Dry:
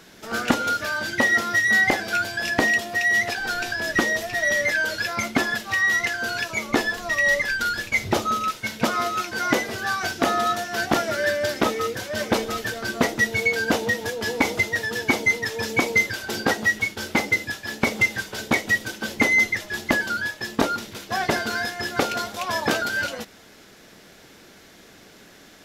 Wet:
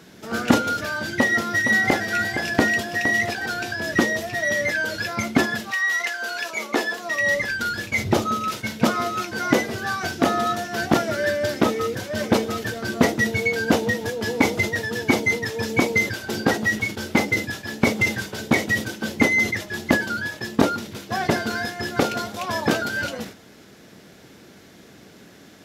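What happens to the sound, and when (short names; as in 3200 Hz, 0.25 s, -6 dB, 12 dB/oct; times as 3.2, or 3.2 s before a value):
1.09–3.46 echo 0.464 s -8.5 dB
5.7–7.19 HPF 850 Hz -> 280 Hz
whole clip: HPF 86 Hz; low shelf 380 Hz +9.5 dB; sustainer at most 140 dB/s; gain -2 dB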